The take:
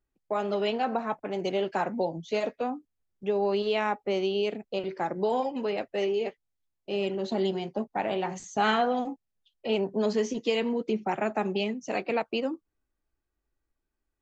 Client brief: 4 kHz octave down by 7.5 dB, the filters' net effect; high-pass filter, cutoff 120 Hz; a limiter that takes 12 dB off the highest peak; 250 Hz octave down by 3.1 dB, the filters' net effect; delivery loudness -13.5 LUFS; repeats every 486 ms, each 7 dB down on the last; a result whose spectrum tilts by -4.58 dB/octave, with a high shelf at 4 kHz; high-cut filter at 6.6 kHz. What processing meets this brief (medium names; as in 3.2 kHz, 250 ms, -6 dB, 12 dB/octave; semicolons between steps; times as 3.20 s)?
high-pass 120 Hz; low-pass 6.6 kHz; peaking EQ 250 Hz -3.5 dB; treble shelf 4 kHz -6 dB; peaking EQ 4 kHz -8 dB; peak limiter -26 dBFS; feedback delay 486 ms, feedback 45%, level -7 dB; trim +21.5 dB